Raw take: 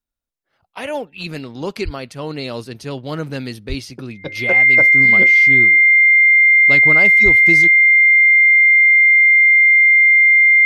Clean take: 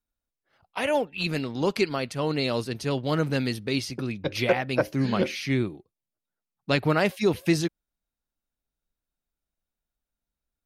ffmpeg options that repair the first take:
-filter_complex "[0:a]bandreject=f=2100:w=30,asplit=3[s0][s1][s2];[s0]afade=t=out:st=1.84:d=0.02[s3];[s1]highpass=f=140:w=0.5412,highpass=f=140:w=1.3066,afade=t=in:st=1.84:d=0.02,afade=t=out:st=1.96:d=0.02[s4];[s2]afade=t=in:st=1.96:d=0.02[s5];[s3][s4][s5]amix=inputs=3:normalize=0,asplit=3[s6][s7][s8];[s6]afade=t=out:st=3.68:d=0.02[s9];[s7]highpass=f=140:w=0.5412,highpass=f=140:w=1.3066,afade=t=in:st=3.68:d=0.02,afade=t=out:st=3.8:d=0.02[s10];[s8]afade=t=in:st=3.8:d=0.02[s11];[s9][s10][s11]amix=inputs=3:normalize=0,asplit=3[s12][s13][s14];[s12]afade=t=out:st=7.24:d=0.02[s15];[s13]highpass=f=140:w=0.5412,highpass=f=140:w=1.3066,afade=t=in:st=7.24:d=0.02,afade=t=out:st=7.36:d=0.02[s16];[s14]afade=t=in:st=7.36:d=0.02[s17];[s15][s16][s17]amix=inputs=3:normalize=0"

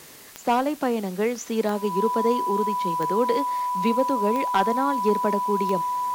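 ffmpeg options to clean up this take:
-af "adeclick=t=4,bandreject=f=990:w=30,afwtdn=0.005"

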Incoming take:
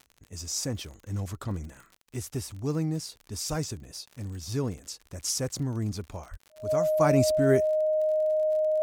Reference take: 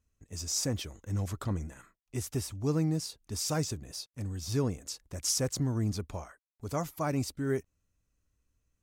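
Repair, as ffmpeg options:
-filter_complex "[0:a]adeclick=t=4,bandreject=f=620:w=30,asplit=3[s0][s1][s2];[s0]afade=t=out:st=3.49:d=0.02[s3];[s1]highpass=f=140:w=0.5412,highpass=f=140:w=1.3066,afade=t=in:st=3.49:d=0.02,afade=t=out:st=3.61:d=0.02[s4];[s2]afade=t=in:st=3.61:d=0.02[s5];[s3][s4][s5]amix=inputs=3:normalize=0,asplit=3[s6][s7][s8];[s6]afade=t=out:st=6.3:d=0.02[s9];[s7]highpass=f=140:w=0.5412,highpass=f=140:w=1.3066,afade=t=in:st=6.3:d=0.02,afade=t=out:st=6.42:d=0.02[s10];[s8]afade=t=in:st=6.42:d=0.02[s11];[s9][s10][s11]amix=inputs=3:normalize=0,asetnsamples=n=441:p=0,asendcmd='7 volume volume -7.5dB',volume=1"

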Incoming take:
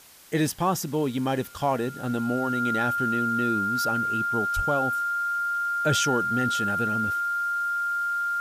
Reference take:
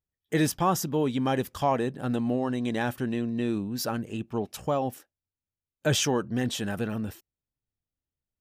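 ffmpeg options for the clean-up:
-filter_complex "[0:a]bandreject=f=1400:w=30,asplit=3[s0][s1][s2];[s0]afade=t=out:st=4.55:d=0.02[s3];[s1]highpass=f=140:w=0.5412,highpass=f=140:w=1.3066,afade=t=in:st=4.55:d=0.02,afade=t=out:st=4.67:d=0.02[s4];[s2]afade=t=in:st=4.67:d=0.02[s5];[s3][s4][s5]amix=inputs=3:normalize=0,afwtdn=0.0032"

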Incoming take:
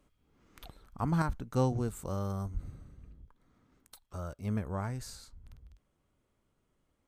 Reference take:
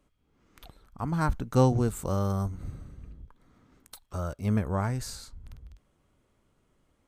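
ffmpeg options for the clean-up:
-filter_complex "[0:a]asplit=3[s0][s1][s2];[s0]afade=t=out:st=2.53:d=0.02[s3];[s1]highpass=f=140:w=0.5412,highpass=f=140:w=1.3066,afade=t=in:st=2.53:d=0.02,afade=t=out:st=2.65:d=0.02[s4];[s2]afade=t=in:st=2.65:d=0.02[s5];[s3][s4][s5]amix=inputs=3:normalize=0,asetnsamples=n=441:p=0,asendcmd='1.22 volume volume 7dB',volume=1"

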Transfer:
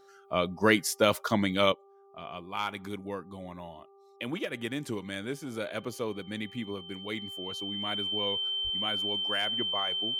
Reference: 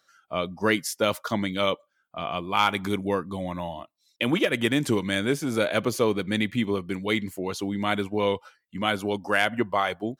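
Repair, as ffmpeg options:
-filter_complex "[0:a]bandreject=f=395.1:t=h:w=4,bandreject=f=790.2:t=h:w=4,bandreject=f=1185.3:t=h:w=4,bandreject=f=3100:w=30,asplit=3[s0][s1][s2];[s0]afade=t=out:st=8.63:d=0.02[s3];[s1]highpass=f=140:w=0.5412,highpass=f=140:w=1.3066,afade=t=in:st=8.63:d=0.02,afade=t=out:st=8.75:d=0.02[s4];[s2]afade=t=in:st=8.75:d=0.02[s5];[s3][s4][s5]amix=inputs=3:normalize=0,asetnsamples=n=441:p=0,asendcmd='1.72 volume volume 11dB',volume=1"

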